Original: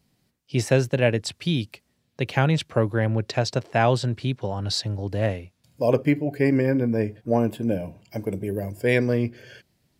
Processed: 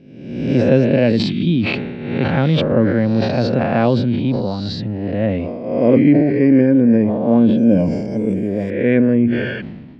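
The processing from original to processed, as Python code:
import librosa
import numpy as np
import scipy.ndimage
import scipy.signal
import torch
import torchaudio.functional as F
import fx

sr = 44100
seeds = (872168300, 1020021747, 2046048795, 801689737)

y = fx.spec_swells(x, sr, rise_s=0.99)
y = fx.dynamic_eq(y, sr, hz=530.0, q=6.1, threshold_db=-35.0, ratio=4.0, max_db=5)
y = fx.lowpass(y, sr, hz=fx.steps((0.0, 4000.0), (7.58, 7300.0), (8.7, 2800.0)), slope=24)
y = fx.peak_eq(y, sr, hz=230.0, db=15.0, octaves=1.2)
y = fx.sustainer(y, sr, db_per_s=39.0)
y = F.gain(torch.from_numpy(y), -3.0).numpy()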